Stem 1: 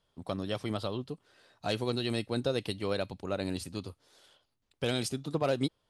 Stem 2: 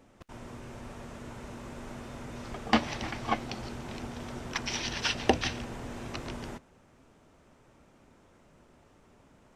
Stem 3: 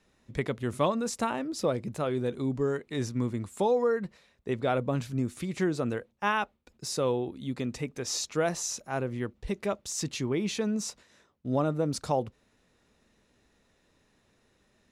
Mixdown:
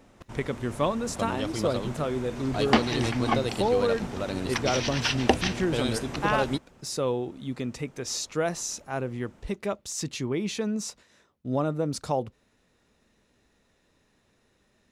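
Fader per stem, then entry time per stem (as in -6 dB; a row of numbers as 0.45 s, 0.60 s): +1.5 dB, +3.0 dB, +0.5 dB; 0.90 s, 0.00 s, 0.00 s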